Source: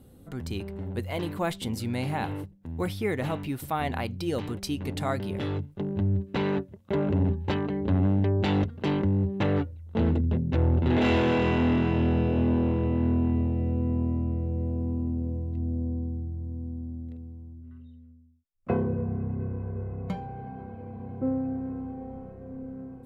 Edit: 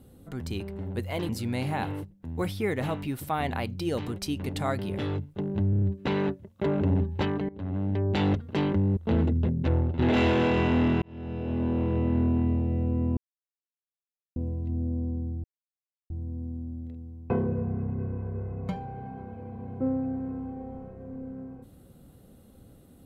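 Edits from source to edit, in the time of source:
0:01.29–0:01.70: remove
0:06.11: stutter 0.03 s, 5 plays
0:07.78–0:08.51: fade in, from −18.5 dB
0:09.26–0:09.85: remove
0:10.47–0:10.87: fade out equal-power, to −10.5 dB
0:11.90–0:12.85: fade in
0:14.05–0:15.24: silence
0:16.32: splice in silence 0.66 s
0:17.52–0:18.71: remove

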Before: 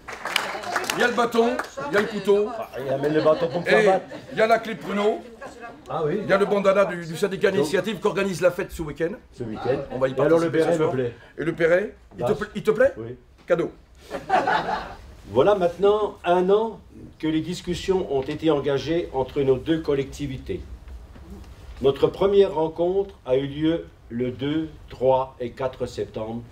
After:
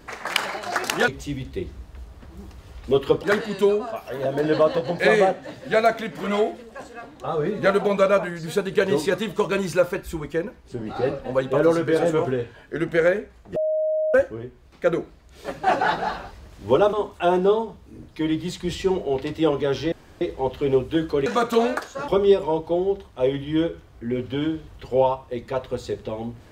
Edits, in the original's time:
0:01.08–0:01.90: swap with 0:20.01–0:22.17
0:12.22–0:12.80: beep over 624 Hz −19.5 dBFS
0:15.59–0:15.97: remove
0:18.96: splice in room tone 0.29 s

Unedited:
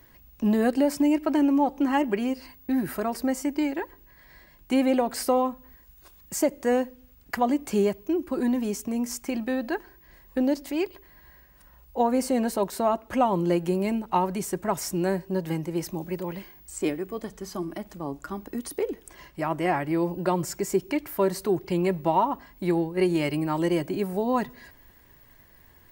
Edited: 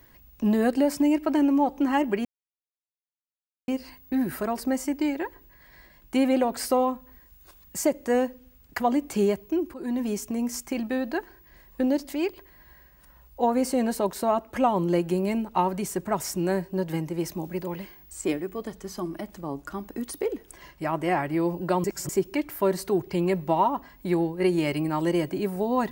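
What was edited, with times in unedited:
0:02.25: splice in silence 1.43 s
0:08.31–0:08.64: fade in, from −14 dB
0:20.41–0:20.66: reverse

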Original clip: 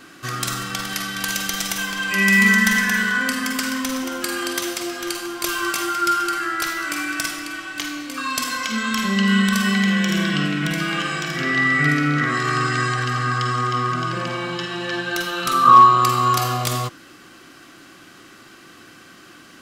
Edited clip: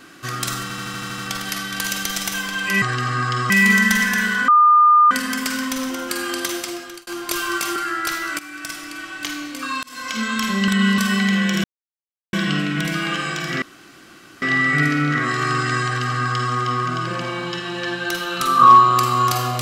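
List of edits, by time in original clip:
0:00.63: stutter 0.08 s, 8 plays
0:03.24: insert tone 1,210 Hz −8.5 dBFS 0.63 s
0:04.60–0:05.20: fade out equal-power
0:05.89–0:06.31: remove
0:06.94–0:07.74: fade in, from −13.5 dB
0:08.38–0:08.72: fade in
0:09.23–0:09.53: reverse
0:10.19: splice in silence 0.69 s
0:11.48: splice in room tone 0.80 s
0:12.91–0:13.59: duplicate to 0:02.26

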